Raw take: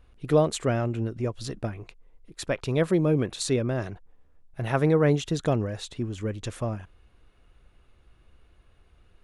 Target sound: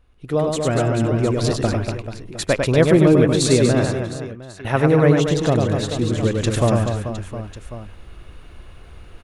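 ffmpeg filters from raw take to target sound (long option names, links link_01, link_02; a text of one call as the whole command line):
ffmpeg -i in.wav -filter_complex "[0:a]asettb=1/sr,asplit=3[link_01][link_02][link_03];[link_01]atrim=end=3.924[link_04];[link_02]atrim=start=3.92:end=4.65,asetpts=PTS-STARTPTS,afade=type=in:duration=0.004:curve=qsin,afade=type=out:start_time=0.726:duration=0.004:curve=qsin,asuperpass=centerf=2500:order=4:qfactor=0.77[link_05];[link_03]atrim=start=4.646[link_06];[link_04][link_05]acrossfade=duration=0.004:curve1=hsin:curve2=qsin[link_07];[link_07][link_06]acrossfade=duration=0.004:curve1=qsin:curve2=hsin,aecho=1:1:100|240|436|710.4|1095:0.631|0.398|0.251|0.158|0.1,dynaudnorm=framelen=170:gausssize=9:maxgain=16.5dB,volume=-1dB" out.wav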